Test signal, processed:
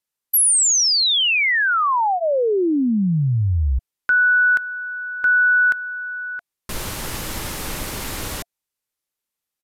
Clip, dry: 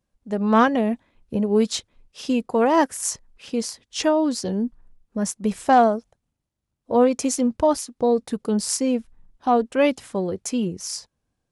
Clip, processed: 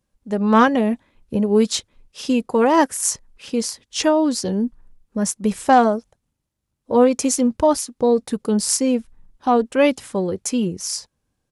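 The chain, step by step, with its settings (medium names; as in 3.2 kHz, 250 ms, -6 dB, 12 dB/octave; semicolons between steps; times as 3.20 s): treble shelf 8.9 kHz +5 dB; band-stop 690 Hz, Q 12; resampled via 32 kHz; trim +3 dB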